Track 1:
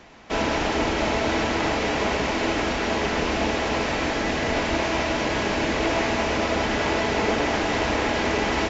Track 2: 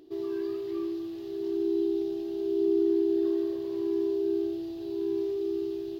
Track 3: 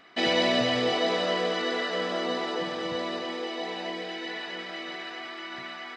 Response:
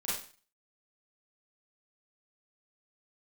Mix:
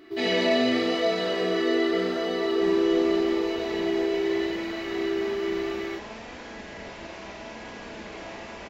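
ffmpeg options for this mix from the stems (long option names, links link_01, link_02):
-filter_complex "[0:a]flanger=delay=3.9:depth=1.9:regen=67:speed=0.74:shape=triangular,adelay=2300,volume=-16dB,asplit=2[link_01][link_02];[link_02]volume=-3.5dB[link_03];[1:a]volume=2dB[link_04];[2:a]aecho=1:1:4.5:0.76,flanger=delay=17.5:depth=7:speed=0.86,volume=-4dB,asplit=2[link_05][link_06];[link_06]volume=-6dB[link_07];[3:a]atrim=start_sample=2205[link_08];[link_03][link_07]amix=inputs=2:normalize=0[link_09];[link_09][link_08]afir=irnorm=-1:irlink=0[link_10];[link_01][link_04][link_05][link_10]amix=inputs=4:normalize=0"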